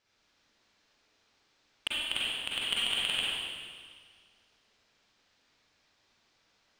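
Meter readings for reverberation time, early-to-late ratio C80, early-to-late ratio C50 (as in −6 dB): 1.8 s, −1.5 dB, −5.0 dB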